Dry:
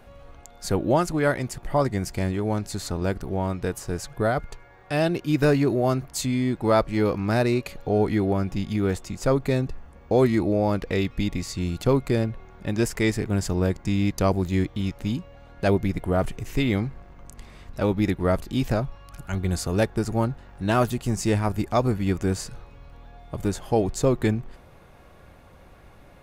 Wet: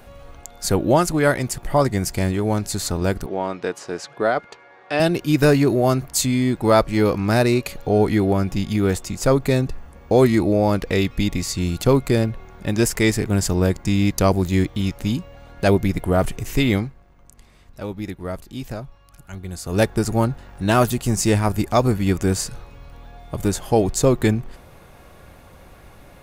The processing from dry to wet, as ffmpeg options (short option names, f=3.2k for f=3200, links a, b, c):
-filter_complex "[0:a]asettb=1/sr,asplit=3[a][b][c];[a]atrim=end=3.264[d];[b]atrim=start=3.26:end=5,asetpts=PTS-STARTPTS,afade=t=in:d=0.004:c=qsin,afade=t=out:st=1.736:d=0.004:c=qsin,highpass=290,lowpass=4.3k[e];[c]atrim=start=4.996[f];[d][e]acrossfade=d=0.004:c1=hsin:c2=qsin[g];[g][f]acrossfade=d=0.004:c1=qsin:c2=hsin,asplit=3[h][i][j];[h]atrim=end=16.93,asetpts=PTS-STARTPTS,afade=t=out:st=16.75:d=0.18:silence=0.266073[k];[i]atrim=start=16.93:end=19.63,asetpts=PTS-STARTPTS,volume=-11.5dB[l];[j]atrim=start=19.63,asetpts=PTS-STARTPTS,afade=t=in:d=0.18:silence=0.266073[m];[k][l][m]concat=n=3:v=0:a=1,highshelf=f=5.5k:g=7.5,volume=4.5dB"